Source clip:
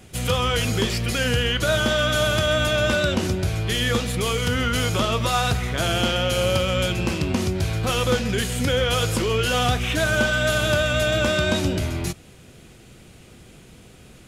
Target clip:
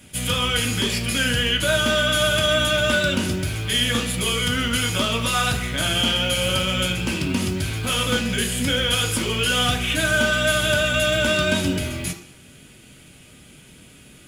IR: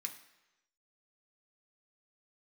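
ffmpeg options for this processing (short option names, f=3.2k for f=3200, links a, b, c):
-filter_complex "[0:a]acrusher=bits=9:mode=log:mix=0:aa=0.000001[a];[1:a]atrim=start_sample=2205,asetrate=57330,aresample=44100[b];[a][b]afir=irnorm=-1:irlink=0,volume=7dB"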